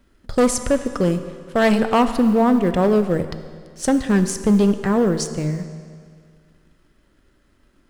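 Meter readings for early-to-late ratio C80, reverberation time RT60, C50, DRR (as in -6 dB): 11.5 dB, 2.0 s, 10.5 dB, 9.5 dB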